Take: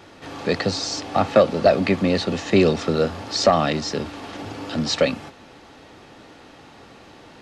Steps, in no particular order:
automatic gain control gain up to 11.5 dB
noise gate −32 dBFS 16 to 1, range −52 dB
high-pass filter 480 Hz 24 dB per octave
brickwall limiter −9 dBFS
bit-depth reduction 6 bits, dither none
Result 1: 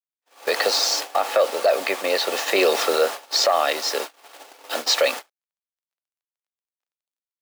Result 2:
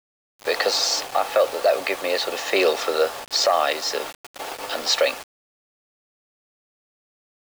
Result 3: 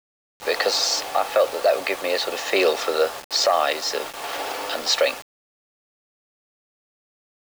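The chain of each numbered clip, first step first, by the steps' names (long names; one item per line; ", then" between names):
bit-depth reduction, then high-pass filter, then noise gate, then automatic gain control, then brickwall limiter
noise gate, then automatic gain control, then high-pass filter, then brickwall limiter, then bit-depth reduction
automatic gain control, then high-pass filter, then brickwall limiter, then noise gate, then bit-depth reduction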